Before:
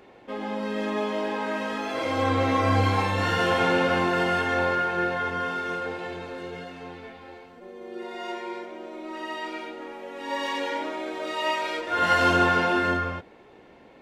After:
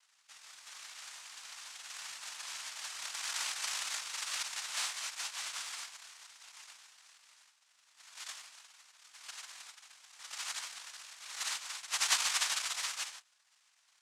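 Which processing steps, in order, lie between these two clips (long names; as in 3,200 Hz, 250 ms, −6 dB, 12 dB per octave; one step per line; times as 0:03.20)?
lower of the sound and its delayed copy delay 1.1 ms
flat-topped band-pass 2,900 Hz, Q 6.1
cochlear-implant simulation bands 2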